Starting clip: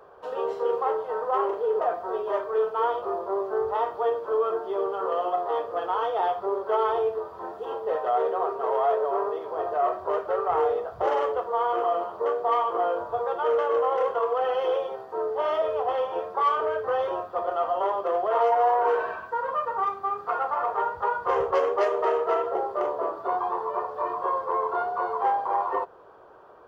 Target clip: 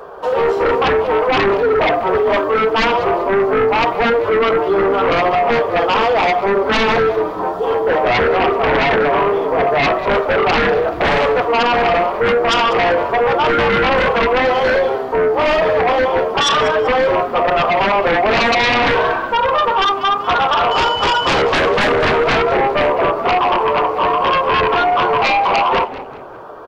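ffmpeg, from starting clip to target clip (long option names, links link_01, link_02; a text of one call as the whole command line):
ffmpeg -i in.wav -filter_complex "[0:a]flanger=delay=4.1:depth=3.7:regen=-45:speed=0.73:shape=triangular,asettb=1/sr,asplit=3[link_01][link_02][link_03];[link_01]atrim=end=20.714[link_04];[link_02]atrim=start=20.71:end=21.42,asetpts=PTS-STARTPTS,afade=type=in:duration=0.004:curve=qsin,afade=type=out:start_time=0.706:duration=0.004:curve=qsin,aeval=exprs='val(0)+0.00891*sin(2*PI*3000*n/s)':channel_layout=same[link_05];[link_03]atrim=start=21.416[link_06];[link_04][link_05]acrossfade=duration=0.004:curve1=hsin:curve2=qsin[link_07];[link_07][link_06]acrossfade=duration=0.004:curve1=qsin:curve2=hsin,aeval=exprs='0.178*sin(PI/2*4.47*val(0)/0.178)':channel_layout=same,asplit=2[link_08][link_09];[link_09]asplit=3[link_10][link_11][link_12];[link_10]adelay=193,afreqshift=-130,volume=-15dB[link_13];[link_11]adelay=386,afreqshift=-260,volume=-23.6dB[link_14];[link_12]adelay=579,afreqshift=-390,volume=-32.3dB[link_15];[link_13][link_14][link_15]amix=inputs=3:normalize=0[link_16];[link_08][link_16]amix=inputs=2:normalize=0,volume=4dB" out.wav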